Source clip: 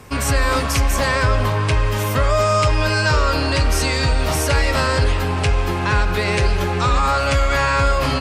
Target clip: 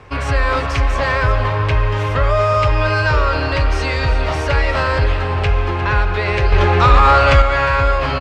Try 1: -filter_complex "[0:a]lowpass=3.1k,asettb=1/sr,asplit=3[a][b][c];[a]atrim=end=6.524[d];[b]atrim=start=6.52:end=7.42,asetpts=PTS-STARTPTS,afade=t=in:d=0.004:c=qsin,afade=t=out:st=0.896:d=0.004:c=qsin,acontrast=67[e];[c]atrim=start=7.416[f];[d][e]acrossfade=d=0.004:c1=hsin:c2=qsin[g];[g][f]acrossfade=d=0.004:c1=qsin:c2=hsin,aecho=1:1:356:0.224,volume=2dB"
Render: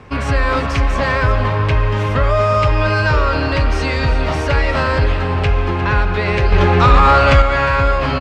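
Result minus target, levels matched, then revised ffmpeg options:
250 Hz band +4.5 dB
-filter_complex "[0:a]lowpass=3.1k,equalizer=f=210:t=o:w=0.74:g=-11,asettb=1/sr,asplit=3[a][b][c];[a]atrim=end=6.524[d];[b]atrim=start=6.52:end=7.42,asetpts=PTS-STARTPTS,afade=t=in:d=0.004:c=qsin,afade=t=out:st=0.896:d=0.004:c=qsin,acontrast=67[e];[c]atrim=start=7.416[f];[d][e]acrossfade=d=0.004:c1=hsin:c2=qsin[g];[g][f]acrossfade=d=0.004:c1=qsin:c2=hsin,aecho=1:1:356:0.224,volume=2dB"

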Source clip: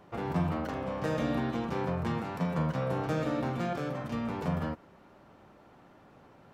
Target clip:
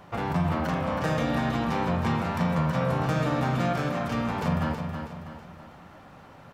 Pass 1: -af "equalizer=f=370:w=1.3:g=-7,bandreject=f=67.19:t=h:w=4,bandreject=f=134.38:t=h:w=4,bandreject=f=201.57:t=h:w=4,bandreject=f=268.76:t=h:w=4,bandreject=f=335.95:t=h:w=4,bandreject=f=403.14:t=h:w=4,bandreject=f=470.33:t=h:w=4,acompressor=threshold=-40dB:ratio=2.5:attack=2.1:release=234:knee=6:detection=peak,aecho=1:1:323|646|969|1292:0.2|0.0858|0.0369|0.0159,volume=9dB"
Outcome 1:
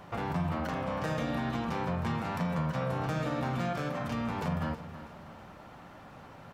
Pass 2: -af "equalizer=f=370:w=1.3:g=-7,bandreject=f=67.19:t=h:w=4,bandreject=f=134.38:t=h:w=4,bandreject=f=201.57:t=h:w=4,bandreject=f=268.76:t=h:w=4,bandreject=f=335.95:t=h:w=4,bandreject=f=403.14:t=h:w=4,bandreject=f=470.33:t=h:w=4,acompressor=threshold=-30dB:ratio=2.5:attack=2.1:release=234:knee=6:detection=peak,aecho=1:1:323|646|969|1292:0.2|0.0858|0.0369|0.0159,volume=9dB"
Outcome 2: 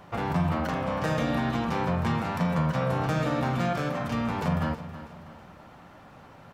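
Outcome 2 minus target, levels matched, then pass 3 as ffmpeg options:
echo-to-direct -7 dB
-af "equalizer=f=370:w=1.3:g=-7,bandreject=f=67.19:t=h:w=4,bandreject=f=134.38:t=h:w=4,bandreject=f=201.57:t=h:w=4,bandreject=f=268.76:t=h:w=4,bandreject=f=335.95:t=h:w=4,bandreject=f=403.14:t=h:w=4,bandreject=f=470.33:t=h:w=4,acompressor=threshold=-30dB:ratio=2.5:attack=2.1:release=234:knee=6:detection=peak,aecho=1:1:323|646|969|1292|1615:0.447|0.192|0.0826|0.0355|0.0153,volume=9dB"

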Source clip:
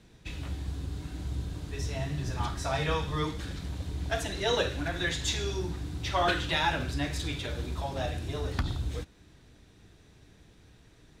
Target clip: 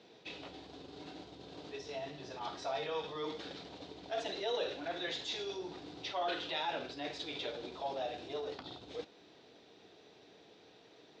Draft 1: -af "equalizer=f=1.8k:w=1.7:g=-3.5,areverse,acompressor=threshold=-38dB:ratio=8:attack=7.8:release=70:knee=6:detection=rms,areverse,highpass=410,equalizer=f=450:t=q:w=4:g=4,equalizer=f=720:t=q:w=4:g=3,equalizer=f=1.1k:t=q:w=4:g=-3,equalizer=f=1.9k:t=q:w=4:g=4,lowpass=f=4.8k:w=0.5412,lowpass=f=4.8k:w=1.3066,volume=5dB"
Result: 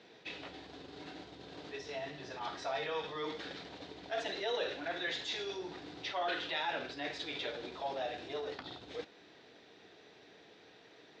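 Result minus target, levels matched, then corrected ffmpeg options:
2000 Hz band +4.0 dB
-af "equalizer=f=1.8k:w=1.7:g=-11,areverse,acompressor=threshold=-38dB:ratio=8:attack=7.8:release=70:knee=6:detection=rms,areverse,highpass=410,equalizer=f=450:t=q:w=4:g=4,equalizer=f=720:t=q:w=4:g=3,equalizer=f=1.1k:t=q:w=4:g=-3,equalizer=f=1.9k:t=q:w=4:g=4,lowpass=f=4.8k:w=0.5412,lowpass=f=4.8k:w=1.3066,volume=5dB"

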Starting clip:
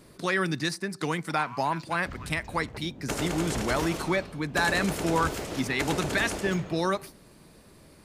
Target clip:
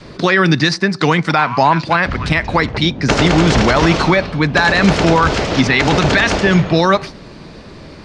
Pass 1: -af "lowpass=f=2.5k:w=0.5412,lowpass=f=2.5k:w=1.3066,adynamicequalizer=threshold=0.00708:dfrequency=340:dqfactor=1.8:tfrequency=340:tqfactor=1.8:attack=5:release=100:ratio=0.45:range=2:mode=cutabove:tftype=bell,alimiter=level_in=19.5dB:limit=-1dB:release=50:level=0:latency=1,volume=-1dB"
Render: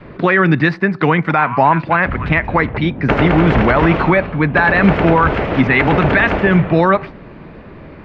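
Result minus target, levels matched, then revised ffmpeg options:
4000 Hz band -11.0 dB
-af "lowpass=f=5.5k:w=0.5412,lowpass=f=5.5k:w=1.3066,adynamicequalizer=threshold=0.00708:dfrequency=340:dqfactor=1.8:tfrequency=340:tqfactor=1.8:attack=5:release=100:ratio=0.45:range=2:mode=cutabove:tftype=bell,alimiter=level_in=19.5dB:limit=-1dB:release=50:level=0:latency=1,volume=-1dB"

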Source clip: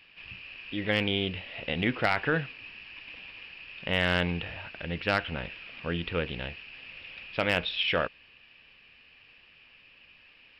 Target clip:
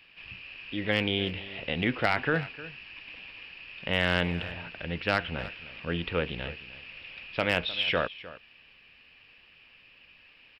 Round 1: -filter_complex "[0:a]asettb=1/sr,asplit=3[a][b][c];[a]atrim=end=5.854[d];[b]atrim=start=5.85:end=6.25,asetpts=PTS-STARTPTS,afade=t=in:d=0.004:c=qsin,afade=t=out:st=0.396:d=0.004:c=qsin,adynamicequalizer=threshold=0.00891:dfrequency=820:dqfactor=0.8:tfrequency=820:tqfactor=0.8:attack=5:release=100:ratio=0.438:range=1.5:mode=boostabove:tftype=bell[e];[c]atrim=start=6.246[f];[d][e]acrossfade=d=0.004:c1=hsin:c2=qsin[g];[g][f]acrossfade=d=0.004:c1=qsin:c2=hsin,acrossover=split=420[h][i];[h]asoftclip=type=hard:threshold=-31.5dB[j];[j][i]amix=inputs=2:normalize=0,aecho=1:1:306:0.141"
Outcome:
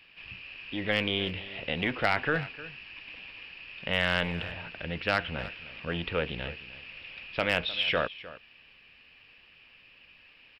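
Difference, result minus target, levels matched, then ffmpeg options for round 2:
hard clip: distortion +40 dB
-filter_complex "[0:a]asettb=1/sr,asplit=3[a][b][c];[a]atrim=end=5.854[d];[b]atrim=start=5.85:end=6.25,asetpts=PTS-STARTPTS,afade=t=in:d=0.004:c=qsin,afade=t=out:st=0.396:d=0.004:c=qsin,adynamicequalizer=threshold=0.00891:dfrequency=820:dqfactor=0.8:tfrequency=820:tqfactor=0.8:attack=5:release=100:ratio=0.438:range=1.5:mode=boostabove:tftype=bell[e];[c]atrim=start=6.246[f];[d][e]acrossfade=d=0.004:c1=hsin:c2=qsin[g];[g][f]acrossfade=d=0.004:c1=qsin:c2=hsin,acrossover=split=420[h][i];[h]asoftclip=type=hard:threshold=-21.5dB[j];[j][i]amix=inputs=2:normalize=0,aecho=1:1:306:0.141"

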